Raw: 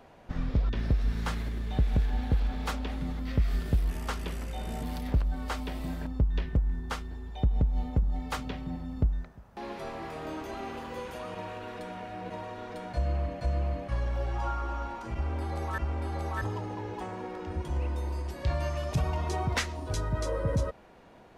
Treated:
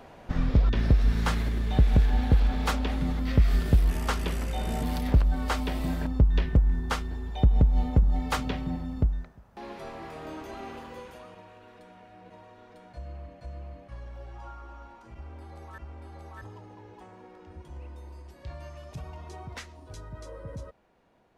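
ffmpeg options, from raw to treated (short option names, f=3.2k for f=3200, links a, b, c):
-af "volume=5.5dB,afade=t=out:st=8.54:d=0.82:silence=0.421697,afade=t=out:st=10.72:d=0.71:silence=0.334965"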